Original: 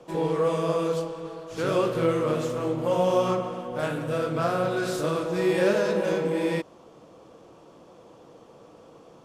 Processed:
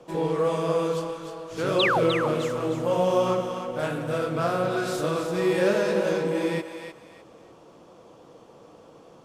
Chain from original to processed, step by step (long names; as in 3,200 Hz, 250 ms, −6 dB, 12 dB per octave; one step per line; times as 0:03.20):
sound drawn into the spectrogram fall, 0:01.79–0:02.04, 390–4,300 Hz −23 dBFS
feedback echo with a high-pass in the loop 303 ms, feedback 29%, high-pass 700 Hz, level −7 dB